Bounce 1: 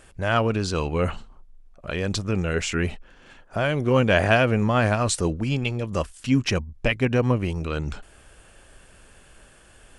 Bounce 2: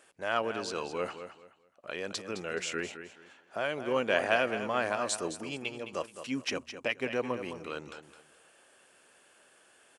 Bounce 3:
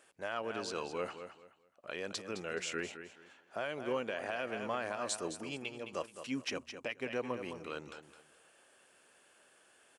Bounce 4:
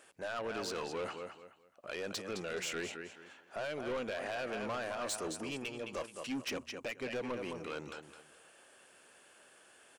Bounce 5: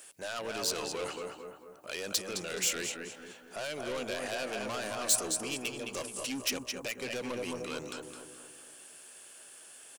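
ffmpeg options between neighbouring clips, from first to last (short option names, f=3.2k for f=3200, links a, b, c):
-filter_complex "[0:a]highpass=350,asplit=2[a][b];[b]aecho=0:1:213|426|639:0.299|0.0776|0.0202[c];[a][c]amix=inputs=2:normalize=0,volume=-7.5dB"
-af "alimiter=limit=-21dB:level=0:latency=1:release=192,volume=-3.5dB"
-af "asoftclip=type=tanh:threshold=-37dB,volume=4dB"
-filter_complex "[0:a]acrossover=split=1600[a][b];[a]aecho=1:1:229|458|687|916|1145|1374:0.562|0.27|0.13|0.0622|0.0299|0.0143[c];[b]crystalizer=i=4:c=0[d];[c][d]amix=inputs=2:normalize=0"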